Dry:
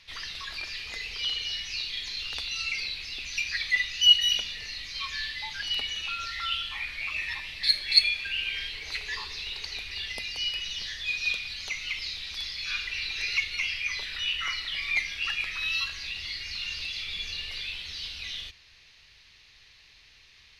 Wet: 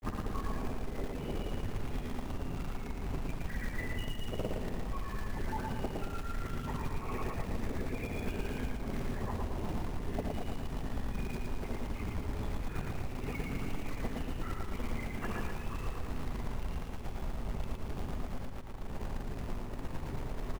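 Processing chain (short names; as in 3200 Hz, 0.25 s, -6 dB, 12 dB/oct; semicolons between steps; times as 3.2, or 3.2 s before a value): LPF 1100 Hz 12 dB/oct; on a send at -22 dB: reverb, pre-delay 63 ms; on the sum: LPC vocoder at 8 kHz whisper; grains; AGC gain up to 14 dB; tilt -4.5 dB/oct; small resonant body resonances 250/390 Hz, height 12 dB, ringing for 30 ms; short-mantissa float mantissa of 2-bit; compressor 20:1, threshold -43 dBFS, peak gain reduction 38 dB; bell 790 Hz +10 dB 1.7 oct; feedback echo 0.114 s, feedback 46%, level -3 dB; gain +8.5 dB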